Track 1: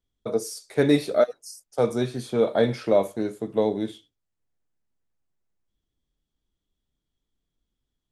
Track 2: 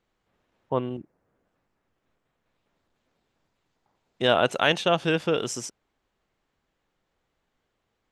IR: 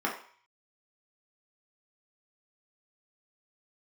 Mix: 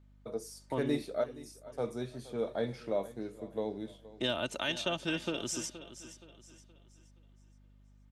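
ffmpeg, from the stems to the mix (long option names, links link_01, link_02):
-filter_complex "[0:a]volume=-13dB,asplit=2[link_01][link_02];[link_02]volume=-18dB[link_03];[1:a]alimiter=limit=-9.5dB:level=0:latency=1:release=240,acrossover=split=220|3000[link_04][link_05][link_06];[link_05]acompressor=threshold=-33dB:ratio=3[link_07];[link_04][link_07][link_06]amix=inputs=3:normalize=0,aecho=1:1:3.3:0.56,volume=-4.5dB,asplit=2[link_08][link_09];[link_09]volume=-13.5dB[link_10];[link_03][link_10]amix=inputs=2:normalize=0,aecho=0:1:472|944|1416|1888|2360:1|0.37|0.137|0.0507|0.0187[link_11];[link_01][link_08][link_11]amix=inputs=3:normalize=0,aeval=exprs='val(0)+0.00112*(sin(2*PI*50*n/s)+sin(2*PI*2*50*n/s)/2+sin(2*PI*3*50*n/s)/3+sin(2*PI*4*50*n/s)/4+sin(2*PI*5*50*n/s)/5)':channel_layout=same"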